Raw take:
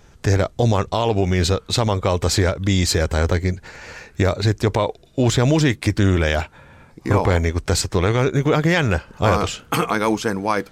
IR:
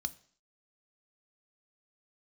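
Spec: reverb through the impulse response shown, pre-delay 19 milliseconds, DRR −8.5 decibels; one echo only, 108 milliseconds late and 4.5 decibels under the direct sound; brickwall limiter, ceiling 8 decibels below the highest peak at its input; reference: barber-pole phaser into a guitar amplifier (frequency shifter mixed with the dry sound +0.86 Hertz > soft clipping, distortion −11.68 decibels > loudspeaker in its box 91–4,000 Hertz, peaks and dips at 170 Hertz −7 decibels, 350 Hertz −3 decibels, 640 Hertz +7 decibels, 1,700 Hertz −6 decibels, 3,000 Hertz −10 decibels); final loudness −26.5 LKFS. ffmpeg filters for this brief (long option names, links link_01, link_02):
-filter_complex "[0:a]alimiter=limit=-14dB:level=0:latency=1,aecho=1:1:108:0.596,asplit=2[link_01][link_02];[1:a]atrim=start_sample=2205,adelay=19[link_03];[link_02][link_03]afir=irnorm=-1:irlink=0,volume=9dB[link_04];[link_01][link_04]amix=inputs=2:normalize=0,asplit=2[link_05][link_06];[link_06]afreqshift=0.86[link_07];[link_05][link_07]amix=inputs=2:normalize=1,asoftclip=threshold=-12.5dB,highpass=91,equalizer=frequency=170:width_type=q:width=4:gain=-7,equalizer=frequency=350:width_type=q:width=4:gain=-3,equalizer=frequency=640:width_type=q:width=4:gain=7,equalizer=frequency=1700:width_type=q:width=4:gain=-6,equalizer=frequency=3000:width_type=q:width=4:gain=-10,lowpass=frequency=4000:width=0.5412,lowpass=frequency=4000:width=1.3066,volume=-5dB"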